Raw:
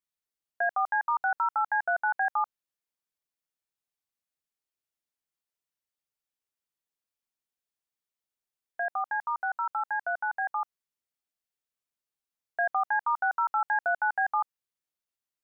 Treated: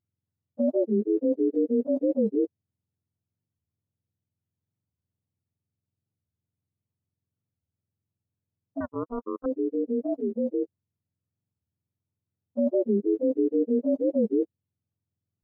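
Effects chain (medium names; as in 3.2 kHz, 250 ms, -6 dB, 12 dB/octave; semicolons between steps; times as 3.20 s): spectrum inverted on a logarithmic axis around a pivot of 630 Hz; 8.82–9.46 s: power-law waveshaper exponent 3; warped record 45 rpm, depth 250 cents; trim +4 dB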